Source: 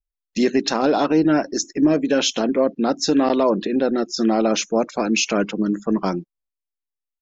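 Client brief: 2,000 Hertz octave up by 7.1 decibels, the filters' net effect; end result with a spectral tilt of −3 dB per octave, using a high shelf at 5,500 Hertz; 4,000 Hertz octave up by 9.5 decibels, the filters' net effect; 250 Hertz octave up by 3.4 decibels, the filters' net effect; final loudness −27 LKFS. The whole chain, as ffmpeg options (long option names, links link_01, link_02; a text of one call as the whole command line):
ffmpeg -i in.wav -af "equalizer=frequency=250:width_type=o:gain=4,equalizer=frequency=2000:width_type=o:gain=6,equalizer=frequency=4000:width_type=o:gain=8,highshelf=frequency=5500:gain=6.5,volume=-11dB" out.wav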